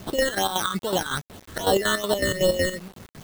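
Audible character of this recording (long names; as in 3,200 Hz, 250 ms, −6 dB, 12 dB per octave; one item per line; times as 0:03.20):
aliases and images of a low sample rate 2,400 Hz, jitter 0%
chopped level 5.4 Hz, depth 65%, duty 55%
phaser sweep stages 8, 2.5 Hz, lowest notch 700–2,100 Hz
a quantiser's noise floor 8 bits, dither none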